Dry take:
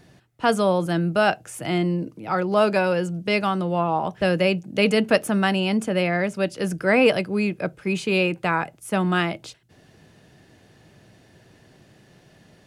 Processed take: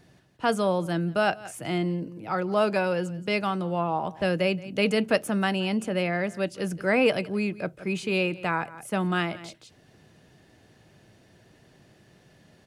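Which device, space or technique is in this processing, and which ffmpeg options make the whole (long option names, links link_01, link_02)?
ducked delay: -filter_complex "[0:a]asplit=3[link_01][link_02][link_03];[link_02]adelay=173,volume=-7dB[link_04];[link_03]apad=whole_len=566367[link_05];[link_04][link_05]sidechaincompress=threshold=-39dB:ratio=5:attack=9:release=187[link_06];[link_01][link_06]amix=inputs=2:normalize=0,volume=-4.5dB"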